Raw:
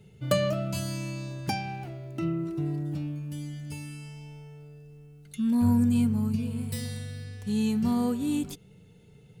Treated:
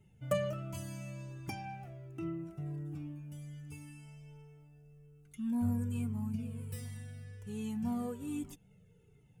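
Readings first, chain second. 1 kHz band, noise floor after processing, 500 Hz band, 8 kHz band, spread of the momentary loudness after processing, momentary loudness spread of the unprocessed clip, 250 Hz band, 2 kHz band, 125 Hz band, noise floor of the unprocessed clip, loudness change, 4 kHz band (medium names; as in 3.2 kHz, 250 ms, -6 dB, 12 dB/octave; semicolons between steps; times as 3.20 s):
-9.5 dB, -64 dBFS, -8.0 dB, -10.5 dB, 19 LU, 19 LU, -11.0 dB, -10.0 dB, -8.5 dB, -55 dBFS, -10.0 dB, under -10 dB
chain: peaking EQ 4.2 kHz -13 dB 0.48 oct; Shepard-style flanger falling 1.3 Hz; trim -5 dB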